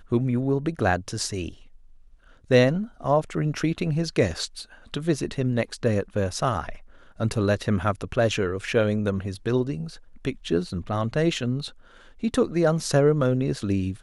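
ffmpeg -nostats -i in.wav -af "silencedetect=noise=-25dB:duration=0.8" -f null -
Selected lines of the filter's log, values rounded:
silence_start: 1.49
silence_end: 2.51 | silence_duration: 1.02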